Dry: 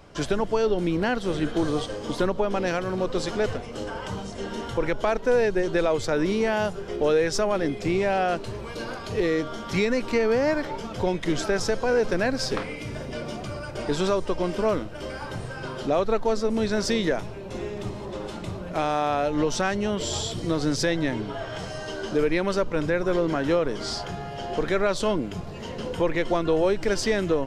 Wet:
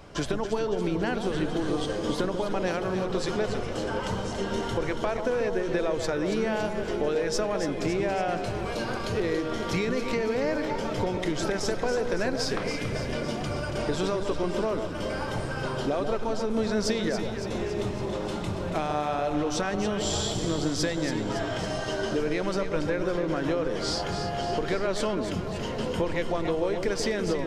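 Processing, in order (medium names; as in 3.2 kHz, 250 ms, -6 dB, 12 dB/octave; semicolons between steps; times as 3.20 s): compression, threshold -27 dBFS, peak gain reduction 9.5 dB; echo whose repeats swap between lows and highs 140 ms, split 1.1 kHz, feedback 78%, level -6 dB; trim +2 dB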